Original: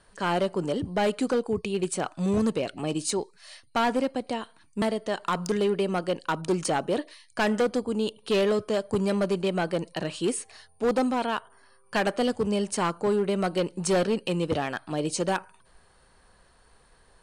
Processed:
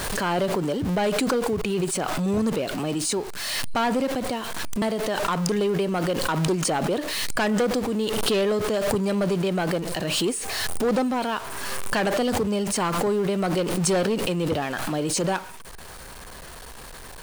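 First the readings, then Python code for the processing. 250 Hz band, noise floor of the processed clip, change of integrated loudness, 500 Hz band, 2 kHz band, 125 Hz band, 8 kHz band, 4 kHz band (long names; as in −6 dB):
+3.0 dB, −41 dBFS, +3.0 dB, +2.0 dB, +4.0 dB, +5.0 dB, +7.0 dB, +6.0 dB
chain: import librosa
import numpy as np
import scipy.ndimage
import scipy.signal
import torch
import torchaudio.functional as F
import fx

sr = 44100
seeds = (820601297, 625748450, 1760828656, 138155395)

y = x + 0.5 * 10.0 ** (-35.5 / 20.0) * np.sign(x)
y = fx.pre_swell(y, sr, db_per_s=25.0)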